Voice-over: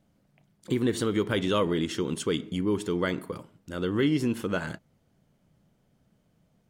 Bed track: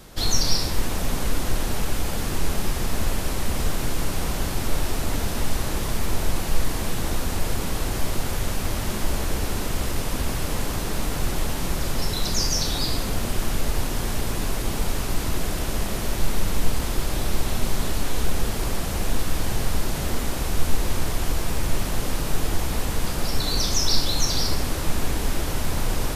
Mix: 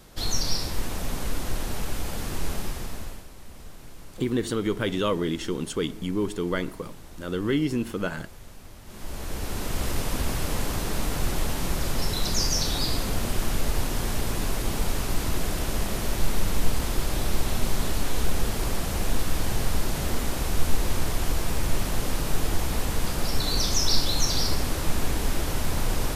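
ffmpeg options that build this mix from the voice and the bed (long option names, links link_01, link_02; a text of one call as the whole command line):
ffmpeg -i stem1.wav -i stem2.wav -filter_complex "[0:a]adelay=3500,volume=0dB[link_01];[1:a]volume=13.5dB,afade=type=out:start_time=2.53:duration=0.74:silence=0.177828,afade=type=in:start_time=8.85:duration=1.05:silence=0.11885[link_02];[link_01][link_02]amix=inputs=2:normalize=0" out.wav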